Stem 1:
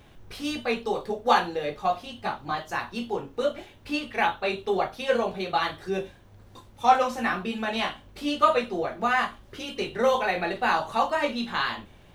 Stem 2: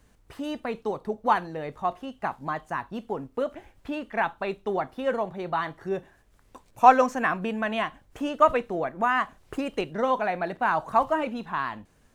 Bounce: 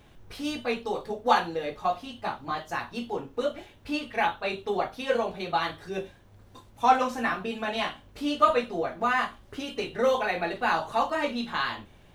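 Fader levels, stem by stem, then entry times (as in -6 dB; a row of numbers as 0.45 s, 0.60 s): -2.5 dB, -9.0 dB; 0.00 s, 0.00 s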